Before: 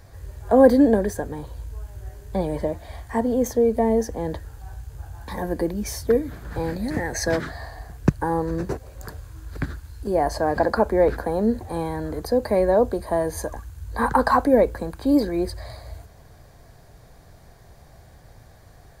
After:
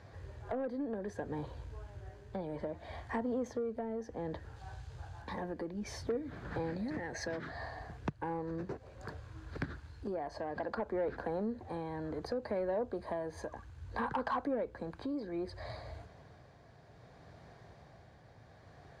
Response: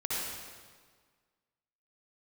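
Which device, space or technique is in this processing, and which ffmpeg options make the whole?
AM radio: -filter_complex "[0:a]highpass=100,lowpass=3900,acompressor=threshold=-29dB:ratio=4,asoftclip=type=tanh:threshold=-22dB,tremolo=f=0.63:d=0.38,asettb=1/sr,asplit=3[link_01][link_02][link_03];[link_01]atrim=end=4.564[link_04];[link_02]atrim=start=4.56:end=5.22,asetpts=PTS-STARTPTS,afade=type=in:duration=0.004:curve=qsin,afade=type=out:start_time=0.656:duration=0.004:curve=qsin,equalizer=frequency=250:width_type=o:width=1:gain=-5,equalizer=frequency=4000:width_type=o:width=1:gain=5,equalizer=frequency=8000:width_type=o:width=1:gain=4[link_05];[link_03]atrim=start=5.216[link_06];[link_04][link_05]acrossfade=duration=0.004:curve1=hsin:curve2=qsin[link_07];[link_07][link_06]acrossfade=duration=0.004:curve1=qsin:curve2=hsin,volume=-3dB"

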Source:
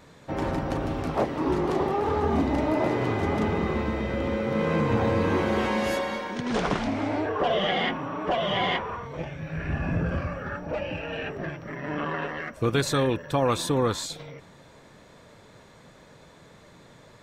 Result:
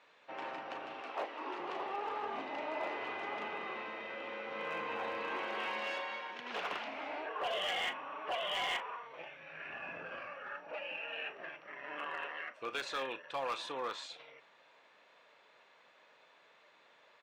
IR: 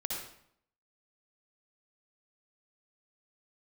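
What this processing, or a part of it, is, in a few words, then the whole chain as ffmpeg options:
megaphone: -filter_complex "[0:a]highpass=700,lowpass=3700,equalizer=frequency=2700:width_type=o:width=0.4:gain=7.5,asoftclip=type=hard:threshold=-22dB,asplit=2[link_01][link_02];[link_02]adelay=37,volume=-14dB[link_03];[link_01][link_03]amix=inputs=2:normalize=0,asettb=1/sr,asplit=3[link_04][link_05][link_06];[link_04]atrim=end=1.014[link_07];[link_05]atrim=start=1.01:end=1.6,asetpts=PTS-STARTPTS,afade=type=in:duration=0.004:curve=qsin,afade=type=out:start_time=0.586:duration=0.004:curve=qsin,highpass=frequency=230:width=0.5412,highpass=frequency=230:width=1.3066[link_08];[link_06]atrim=start=1.596[link_09];[link_07][link_08]acrossfade=duration=0.004:curve1=hsin:curve2=qsin[link_10];[link_10][link_09]acrossfade=duration=0.004:curve1=qsin:curve2=hsin,volume=-8.5dB"

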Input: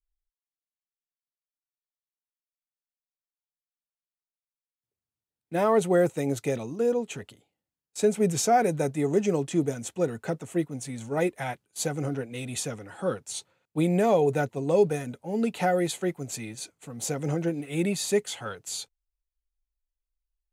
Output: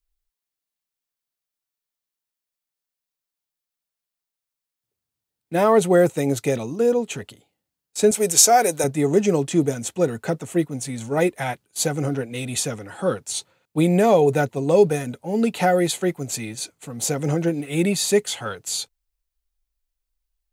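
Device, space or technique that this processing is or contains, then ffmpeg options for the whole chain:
presence and air boost: -filter_complex "[0:a]equalizer=frequency=4300:width_type=o:width=0.77:gain=2,highshelf=frequency=11000:gain=5,asettb=1/sr,asplit=3[link_01][link_02][link_03];[link_01]atrim=end=8.114[link_04];[link_02]atrim=start=8.11:end=8.84,asetpts=PTS-STARTPTS,afade=type=in:duration=0.004:curve=qsin,afade=type=out:start_time=0.726:duration=0.004:curve=qsin,bass=frequency=250:gain=-15,treble=frequency=4000:gain=9[link_05];[link_03]atrim=start=8.836[link_06];[link_04][link_05]acrossfade=duration=0.004:curve1=hsin:curve2=qsin[link_07];[link_07][link_06]acrossfade=duration=0.004:curve1=qsin:curve2=hsin,volume=6dB"

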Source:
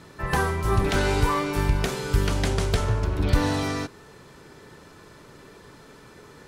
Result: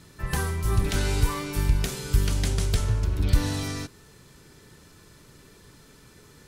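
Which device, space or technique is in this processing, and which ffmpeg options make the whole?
smiley-face EQ: -af "lowshelf=frequency=110:gain=5.5,equalizer=frequency=760:width_type=o:width=2.5:gain=-7,highshelf=frequency=5900:gain=8.5,volume=-3dB"

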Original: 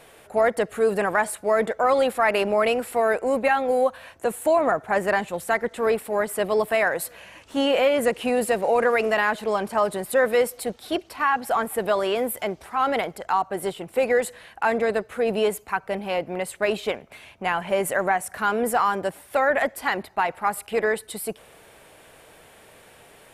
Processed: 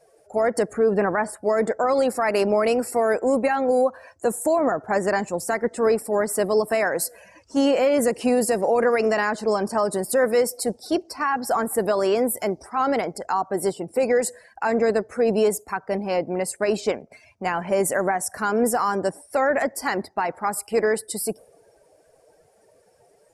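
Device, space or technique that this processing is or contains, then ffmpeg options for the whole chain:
over-bright horn tweeter: -filter_complex "[0:a]lowpass=11000,asettb=1/sr,asplit=3[link_01][link_02][link_03];[link_01]atrim=end=0.734[link_04];[link_02]atrim=start=0.73:end=1.43,asetpts=PTS-STARTPTS,afade=type=in:duration=0.004:curve=qsin,afade=type=out:start_time=0.696:duration=0.004:curve=qsin,bass=frequency=250:gain=2,treble=frequency=4000:gain=-11[link_05];[link_03]atrim=start=1.426[link_06];[link_04][link_05]acrossfade=duration=0.004:curve1=hsin:curve2=qsin[link_07];[link_07][link_06]acrossfade=duration=0.004:curve1=qsin:curve2=hsin,highshelf=frequency=4200:width_type=q:width=3:gain=6.5,alimiter=limit=-14dB:level=0:latency=1:release=101,afftdn=noise_reduction=19:noise_floor=-44,adynamicequalizer=threshold=0.0141:dfrequency=280:dqfactor=0.8:tfrequency=280:tqfactor=0.8:attack=5:release=100:ratio=0.375:range=3:mode=boostabove:tftype=bell"

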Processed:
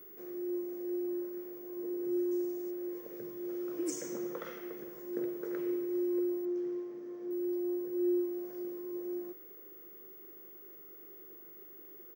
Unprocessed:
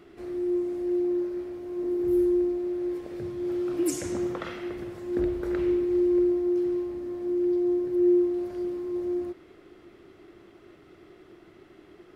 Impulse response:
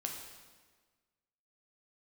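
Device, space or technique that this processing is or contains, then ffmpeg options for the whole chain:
old television with a line whistle: -filter_complex "[0:a]highpass=frequency=170:width=0.5412,highpass=frequency=170:width=1.3066,equalizer=frequency=270:width_type=q:width=4:gain=-4,equalizer=frequency=470:width_type=q:width=4:gain=9,equalizer=frequency=750:width_type=q:width=4:gain=-6,equalizer=frequency=2700:width_type=q:width=4:gain=-6,equalizer=frequency=4100:width_type=q:width=4:gain=-8,equalizer=frequency=6100:width_type=q:width=4:gain=8,lowpass=frequency=8900:width=0.5412,lowpass=frequency=8900:width=1.3066,aeval=exprs='val(0)+0.00708*sin(2*PI*15625*n/s)':channel_layout=same,asettb=1/sr,asplit=3[link_01][link_02][link_03];[link_01]atrim=end=2.314[link_04];[link_02]atrim=start=2.31:end=2.71,asetpts=PTS-STARTPTS,afade=type=in:duration=0.004:curve=qsin,afade=type=out:start_time=0.396:duration=0.004:curve=qsin,equalizer=frequency=7300:width=1:gain=13.5[link_05];[link_03]atrim=start=2.706[link_06];[link_04][link_05]acrossfade=duration=0.004:curve1=hsin:curve2=qsin[link_07];[link_07][link_06]acrossfade=duration=0.004:curve1=qsin:curve2=hsin,asettb=1/sr,asplit=3[link_08][link_09][link_10];[link_08]atrim=end=6.454[link_11];[link_09]atrim=start=6.45:end=7.31,asetpts=PTS-STARTPTS,afade=type=in:duration=0.004:curve=qsin,afade=type=out:start_time=0.856:duration=0.004:curve=qsin,lowpass=5800[link_12];[link_10]atrim=start=7.306[link_13];[link_11][link_12]acrossfade=duration=0.004:curve1=hsin:curve2=qsin[link_14];[link_14][link_13]acrossfade=duration=0.004:curve1=qsin:curve2=hsin,asplit=2[link_15][link_16];[link_16]adelay=13,volume=-12.5dB[link_17];[link_15][link_17]amix=inputs=2:normalize=0,volume=-8.5dB"

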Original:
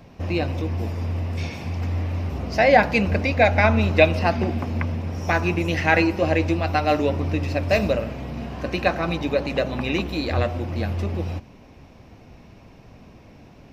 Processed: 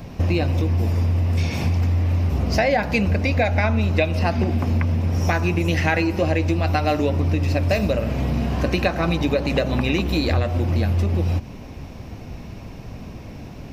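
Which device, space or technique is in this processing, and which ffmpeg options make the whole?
ASMR close-microphone chain: -af "lowshelf=frequency=220:gain=6.5,acompressor=threshold=-24dB:ratio=6,highshelf=frequency=6000:gain=7.5,volume=7dB"

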